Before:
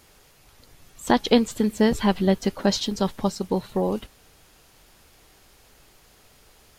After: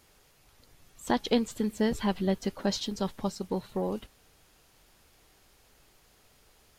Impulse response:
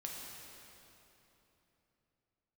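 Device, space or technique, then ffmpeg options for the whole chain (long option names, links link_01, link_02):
parallel distortion: -filter_complex "[0:a]asplit=2[link_01][link_02];[link_02]asoftclip=type=hard:threshold=-20dB,volume=-14dB[link_03];[link_01][link_03]amix=inputs=2:normalize=0,volume=-8.5dB"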